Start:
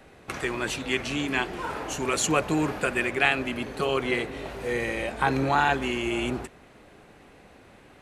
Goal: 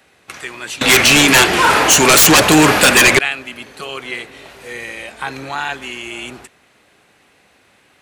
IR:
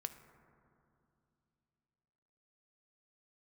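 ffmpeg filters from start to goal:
-filter_complex "[0:a]highpass=66,tiltshelf=frequency=1200:gain=-6.5,asettb=1/sr,asplit=3[link_01][link_02][link_03];[link_01]atrim=end=0.814[link_04];[link_02]atrim=start=0.81:end=3.19,asetpts=PTS-STARTPTS,afade=type=in:duration=0.004:curve=qsin,afade=type=out:start_time=2.376:duration=0.004:curve=qsin,aeval=exprs='0.596*sin(PI/2*8.91*val(0)/0.596)':channel_layout=same[link_05];[link_03]atrim=start=3.186[link_06];[link_04][link_05]acrossfade=duration=0.004:curve1=hsin:curve2=qsin[link_07];[link_07][link_06]acrossfade=duration=0.004:curve1=qsin:curve2=hsin"

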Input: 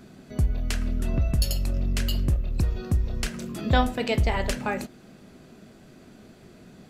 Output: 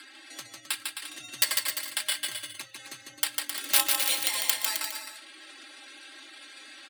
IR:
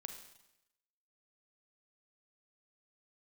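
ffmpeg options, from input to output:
-filter_complex "[0:a]highshelf=frequency=2700:gain=10.5,acompressor=mode=upward:threshold=-23dB:ratio=2.5,acrusher=samples=7:mix=1:aa=0.000001,adynamicsmooth=sensitivity=5:basefreq=5000,aeval=exprs='(mod(3.16*val(0)+1,2)-1)/3.16':channel_layout=same,aderivative,aecho=1:1:3.9:0.77,afreqshift=63,highpass=frequency=180:poles=1,asplit=2[link_01][link_02];[link_02]aecho=0:1:150|262.5|346.9|410.2|457.6:0.631|0.398|0.251|0.158|0.1[link_03];[link_01][link_03]amix=inputs=2:normalize=0,afftdn=noise_reduction=17:noise_floor=-54,volume=3dB"

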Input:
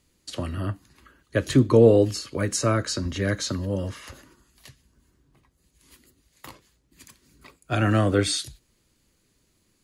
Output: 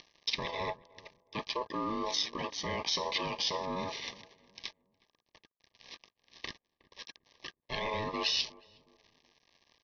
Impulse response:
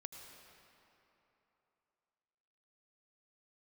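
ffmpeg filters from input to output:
-filter_complex "[0:a]highpass=frequency=94:width=0.5412,highpass=frequency=94:width=1.3066,lowshelf=frequency=200:gain=-8,areverse,acompressor=threshold=-28dB:ratio=16,areverse,alimiter=level_in=2.5dB:limit=-24dB:level=0:latency=1:release=39,volume=-2.5dB,acompressor=mode=upward:threshold=-40dB:ratio=2.5,aexciter=amount=3.5:drive=2.3:freq=2400,aresample=11025,aeval=exprs='sgn(val(0))*max(abs(val(0))-0.00473,0)':channel_layout=same,aresample=44100,aeval=exprs='val(0)*sin(2*PI*750*n/s)':channel_layout=same,asuperstop=centerf=1400:order=20:qfactor=3.8,asplit=2[link_01][link_02];[link_02]adelay=364,lowpass=frequency=810:poles=1,volume=-19dB,asplit=2[link_03][link_04];[link_04]adelay=364,lowpass=frequency=810:poles=1,volume=0.38,asplit=2[link_05][link_06];[link_06]adelay=364,lowpass=frequency=810:poles=1,volume=0.38[link_07];[link_01][link_03][link_05][link_07]amix=inputs=4:normalize=0,volume=4.5dB"

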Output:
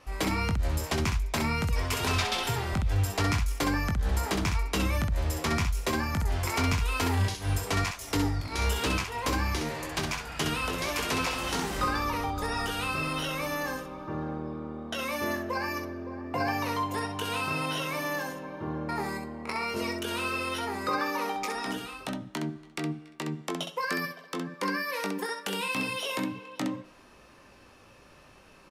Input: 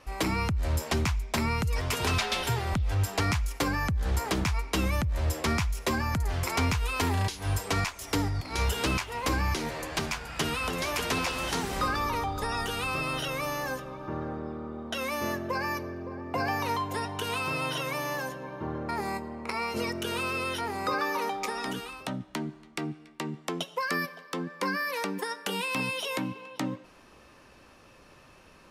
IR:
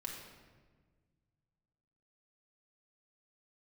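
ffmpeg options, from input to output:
-af "aecho=1:1:20|65:0.447|0.501,volume=-1.5dB"

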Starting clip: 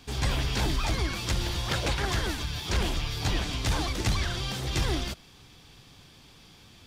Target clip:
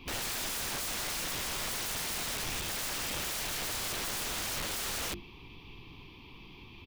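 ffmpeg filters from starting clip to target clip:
ffmpeg -i in.wav -filter_complex "[0:a]bandreject=frequency=50:width_type=h:width=6,bandreject=frequency=100:width_type=h:width=6,bandreject=frequency=150:width_type=h:width=6,bandreject=frequency=200:width_type=h:width=6,bandreject=frequency=250:width_type=h:width=6,bandreject=frequency=300:width_type=h:width=6,bandreject=frequency=350:width_type=h:width=6,afftfilt=real='re*lt(hypot(re,im),0.251)':imag='im*lt(hypot(re,im),0.251)':win_size=1024:overlap=0.75,asplit=4[link_01][link_02][link_03][link_04];[link_02]asetrate=52444,aresample=44100,atempo=0.840896,volume=-16dB[link_05];[link_03]asetrate=55563,aresample=44100,atempo=0.793701,volume=-10dB[link_06];[link_04]asetrate=66075,aresample=44100,atempo=0.66742,volume=-16dB[link_07];[link_01][link_05][link_06][link_07]amix=inputs=4:normalize=0,firequalizer=gain_entry='entry(160,0);entry(360,8);entry(590,-11);entry(990,8);entry(1500,-16);entry(2400,9);entry(3600,-3);entry(7700,-25);entry(13000,-7)':delay=0.05:min_phase=1,aeval=exprs='(mod(35.5*val(0)+1,2)-1)/35.5':channel_layout=same,lowshelf=frequency=64:gain=9" out.wav

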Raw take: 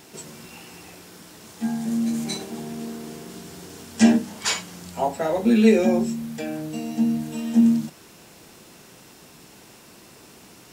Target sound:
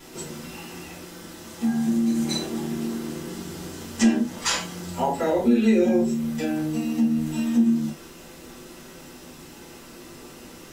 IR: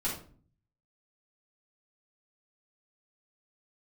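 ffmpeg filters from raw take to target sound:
-filter_complex "[1:a]atrim=start_sample=2205,atrim=end_sample=4410,asetrate=61740,aresample=44100[link_01];[0:a][link_01]afir=irnorm=-1:irlink=0,acompressor=threshold=-23dB:ratio=2,volume=1.5dB"

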